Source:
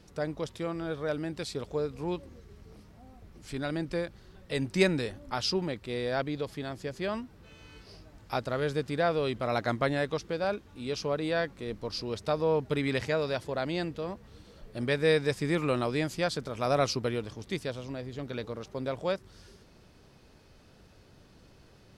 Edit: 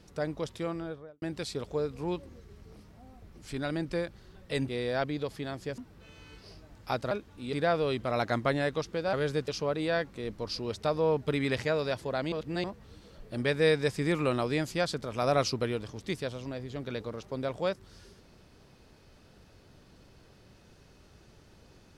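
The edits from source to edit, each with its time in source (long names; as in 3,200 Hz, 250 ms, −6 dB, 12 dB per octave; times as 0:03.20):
0:00.66–0:01.22: fade out and dull
0:04.68–0:05.86: remove
0:06.96–0:07.21: remove
0:08.54–0:08.89: swap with 0:10.49–0:10.91
0:13.75–0:14.07: reverse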